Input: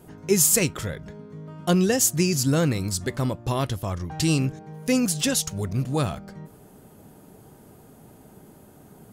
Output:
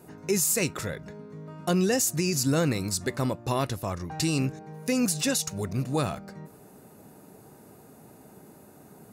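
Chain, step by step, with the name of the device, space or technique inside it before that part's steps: PA system with an anti-feedback notch (high-pass 160 Hz 6 dB/octave; Butterworth band-stop 3.2 kHz, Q 8; peak limiter -15.5 dBFS, peak gain reduction 10.5 dB)

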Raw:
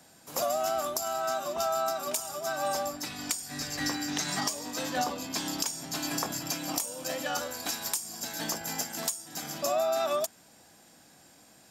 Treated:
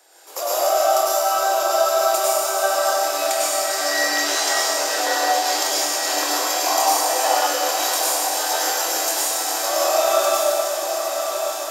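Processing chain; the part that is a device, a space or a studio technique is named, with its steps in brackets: steep high-pass 330 Hz 72 dB/octave; tunnel (flutter echo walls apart 4.4 m, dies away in 0.21 s; reverberation RT60 2.5 s, pre-delay 91 ms, DRR -8 dB); 6.66–7.47 s: high-order bell 850 Hz +10 dB 1 oct; echo that smears into a reverb 1135 ms, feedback 63%, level -6.5 dB; trim +2 dB

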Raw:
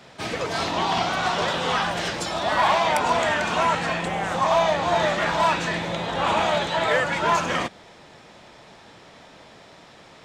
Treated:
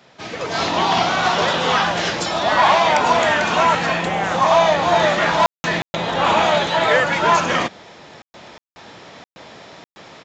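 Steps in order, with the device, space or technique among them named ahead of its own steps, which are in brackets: call with lost packets (high-pass 100 Hz 6 dB/octave; resampled via 16 kHz; level rider gain up to 10.5 dB; lost packets of 60 ms bursts); trim -3 dB

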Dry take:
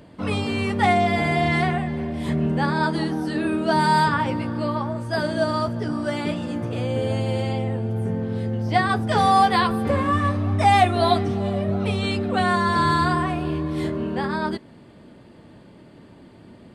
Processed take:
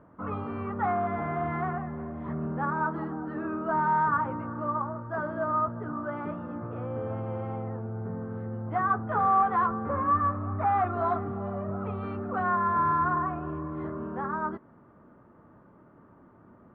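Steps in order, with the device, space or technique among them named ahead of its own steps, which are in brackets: overdriven synthesiser ladder filter (saturation -13.5 dBFS, distortion -17 dB; four-pole ladder low-pass 1.4 kHz, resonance 65%); trim +1.5 dB

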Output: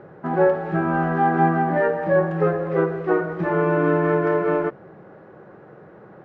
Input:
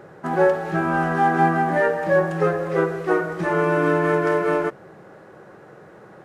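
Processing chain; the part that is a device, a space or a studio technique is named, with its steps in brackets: phone in a pocket (low-pass 3.6 kHz 12 dB/octave; peaking EQ 190 Hz +2 dB 1.6 oct; treble shelf 2.3 kHz -9 dB)

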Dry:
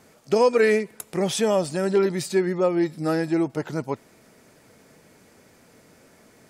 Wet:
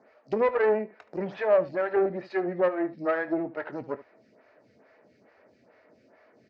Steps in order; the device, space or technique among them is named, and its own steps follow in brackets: low-pass that closes with the level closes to 1.2 kHz, closed at -17 dBFS; low-pass 8.3 kHz; dynamic bell 1.5 kHz, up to +6 dB, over -38 dBFS, Q 0.92; vibe pedal into a guitar amplifier (lamp-driven phase shifter 2.3 Hz; valve stage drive 19 dB, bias 0.7; cabinet simulation 100–4400 Hz, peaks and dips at 160 Hz -8 dB, 620 Hz +7 dB, 1.8 kHz +4 dB, 3.4 kHz -9 dB); early reflections 23 ms -14 dB, 74 ms -17 dB

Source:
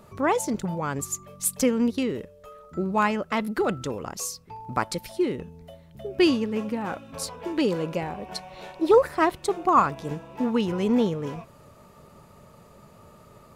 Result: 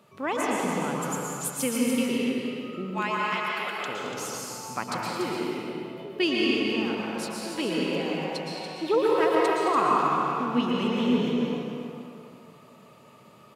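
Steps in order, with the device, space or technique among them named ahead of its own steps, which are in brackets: 2.90–3.88 s: high-pass 800 Hz 12 dB/octave; stadium PA (high-pass 130 Hz 24 dB/octave; peaking EQ 2.9 kHz +8 dB 1 oct; loudspeakers at several distances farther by 75 m -11 dB, 99 m -7 dB; reverberation RT60 2.5 s, pre-delay 108 ms, DRR -3.5 dB); trim -7.5 dB

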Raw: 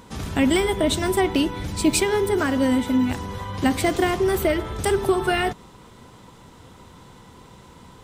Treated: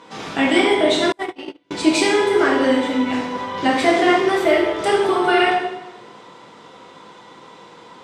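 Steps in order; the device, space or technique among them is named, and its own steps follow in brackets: supermarket ceiling speaker (band-pass 350–5000 Hz; reverberation RT60 1.0 s, pre-delay 5 ms, DRR -4 dB); 1.12–1.71 s: gate -15 dBFS, range -38 dB; trim +2 dB

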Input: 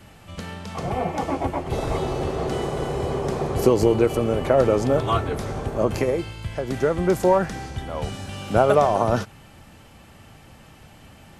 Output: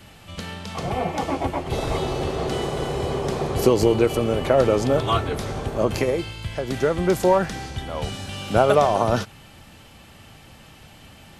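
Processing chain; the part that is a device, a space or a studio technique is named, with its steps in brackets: presence and air boost (peaking EQ 3.6 kHz +5.5 dB 1.3 oct; treble shelf 11 kHz +5 dB)

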